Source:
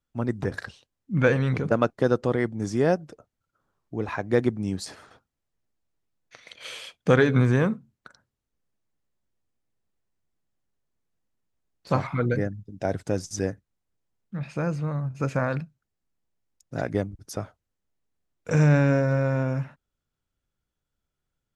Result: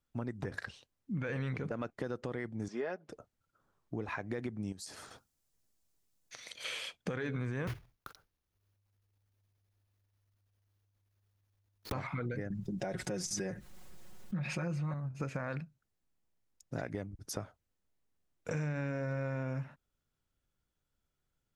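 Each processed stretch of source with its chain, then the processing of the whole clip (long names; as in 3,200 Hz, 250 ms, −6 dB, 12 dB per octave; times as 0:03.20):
0:02.68–0:03.09: band-pass filter 400–3,500 Hz + comb filter 4.8 ms, depth 46%
0:04.72–0:06.64: bass and treble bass +1 dB, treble +12 dB + downward compressor 2.5 to 1, threshold −44 dBFS
0:07.67–0:11.93: one scale factor per block 3 bits + parametric band 7,900 Hz −9 dB 0.27 octaves + frequency shifter −100 Hz
0:12.50–0:14.94: comb filter 5.5 ms, depth 85% + envelope flattener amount 50%
whole clip: dynamic equaliser 2,100 Hz, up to +5 dB, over −43 dBFS, Q 1.5; brickwall limiter −16 dBFS; downward compressor 4 to 1, threshold −35 dBFS; level −1 dB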